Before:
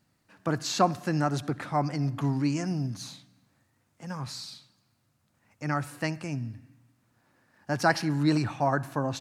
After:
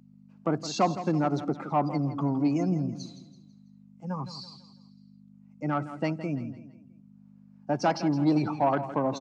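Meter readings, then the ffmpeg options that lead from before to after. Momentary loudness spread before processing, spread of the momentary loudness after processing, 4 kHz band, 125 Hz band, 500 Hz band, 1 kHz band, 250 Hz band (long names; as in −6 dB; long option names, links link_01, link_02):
15 LU, 15 LU, −4.5 dB, −2.0 dB, +2.0 dB, +0.5 dB, +2.5 dB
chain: -filter_complex "[0:a]bandreject=frequency=1800:width=6.3,afftdn=noise_reduction=17:noise_floor=-36,deesser=0.8,highshelf=frequency=2000:gain=-4.5,asplit=2[link_01][link_02];[link_02]alimiter=limit=-21.5dB:level=0:latency=1:release=217,volume=1.5dB[link_03];[link_01][link_03]amix=inputs=2:normalize=0,aeval=exprs='val(0)+0.00794*(sin(2*PI*50*n/s)+sin(2*PI*2*50*n/s)/2+sin(2*PI*3*50*n/s)/3+sin(2*PI*4*50*n/s)/4+sin(2*PI*5*50*n/s)/5)':channel_layout=same,asoftclip=type=tanh:threshold=-14.5dB,highpass=frequency=170:width=0.5412,highpass=frequency=170:width=1.3066,equalizer=frequency=240:width_type=q:width=4:gain=-3,equalizer=frequency=1600:width_type=q:width=4:gain=-7,equalizer=frequency=3800:width_type=q:width=4:gain=-4,lowpass=frequency=7700:width=0.5412,lowpass=frequency=7700:width=1.3066,aecho=1:1:165|330|495|660:0.224|0.0918|0.0376|0.0154"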